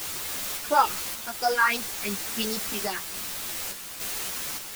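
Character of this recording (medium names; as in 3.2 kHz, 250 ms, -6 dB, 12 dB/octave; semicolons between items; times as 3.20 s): phasing stages 4, 2.9 Hz, lowest notch 490–3000 Hz; a quantiser's noise floor 6-bit, dither triangular; random-step tremolo; a shimmering, thickened sound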